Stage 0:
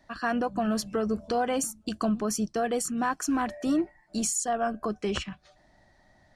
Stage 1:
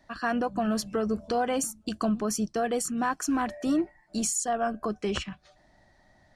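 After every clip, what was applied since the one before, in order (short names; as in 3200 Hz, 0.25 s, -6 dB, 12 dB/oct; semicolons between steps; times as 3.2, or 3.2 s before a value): nothing audible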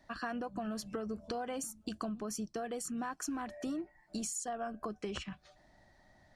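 compressor, threshold -33 dBFS, peak gain reduction 10.5 dB; gain -3 dB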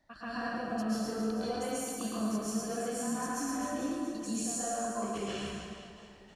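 reverse bouncing-ball echo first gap 0.11 s, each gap 1.3×, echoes 5; plate-style reverb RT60 1.1 s, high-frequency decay 0.95×, pre-delay 0.12 s, DRR -9.5 dB; gain -7.5 dB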